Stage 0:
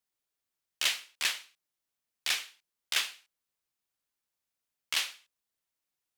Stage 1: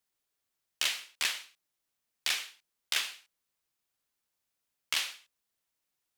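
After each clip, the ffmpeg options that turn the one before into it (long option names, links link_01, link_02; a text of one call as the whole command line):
ffmpeg -i in.wav -af "acompressor=threshold=-29dB:ratio=6,volume=3dB" out.wav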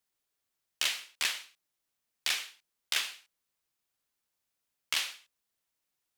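ffmpeg -i in.wav -af anull out.wav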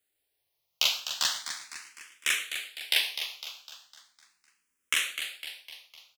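ffmpeg -i in.wav -filter_complex "[0:a]asplit=2[link_01][link_02];[link_02]aecho=0:1:253|506|759|1012|1265|1518:0.355|0.177|0.0887|0.0444|0.0222|0.0111[link_03];[link_01][link_03]amix=inputs=2:normalize=0,asplit=2[link_04][link_05];[link_05]afreqshift=0.38[link_06];[link_04][link_06]amix=inputs=2:normalize=1,volume=7dB" out.wav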